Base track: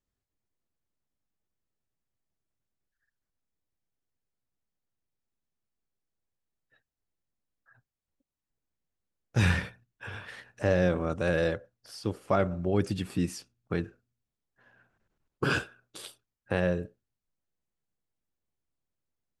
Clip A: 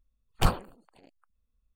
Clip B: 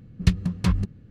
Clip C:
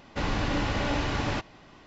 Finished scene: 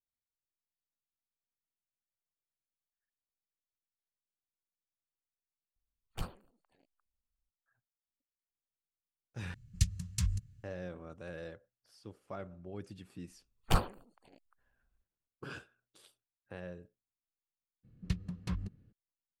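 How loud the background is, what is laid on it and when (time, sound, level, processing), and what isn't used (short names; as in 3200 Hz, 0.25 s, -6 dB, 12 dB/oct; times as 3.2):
base track -18 dB
5.76 add A -15.5 dB + dynamic EQ 950 Hz, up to -4 dB, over -43 dBFS, Q 0.78
9.54 replace with B -8.5 dB + EQ curve 120 Hz 0 dB, 200 Hz -15 dB, 330 Hz -21 dB, 540 Hz -23 dB, 940 Hz -16 dB, 1700 Hz -7 dB, 4100 Hz +1 dB, 6900 Hz +14 dB, 12000 Hz +10 dB
13.29 add A -4.5 dB
17.83 add B -15 dB, fades 0.02 s
not used: C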